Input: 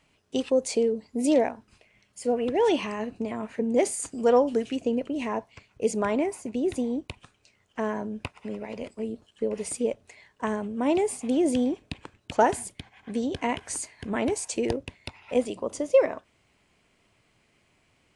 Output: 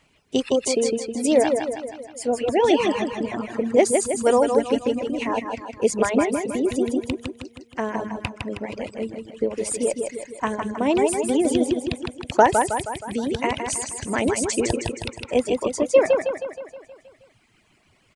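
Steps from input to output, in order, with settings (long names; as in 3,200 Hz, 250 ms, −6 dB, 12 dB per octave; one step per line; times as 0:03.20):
repeating echo 158 ms, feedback 57%, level −3.5 dB
reverb reduction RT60 0.9 s
harmonic and percussive parts rebalanced harmonic −5 dB
level +7 dB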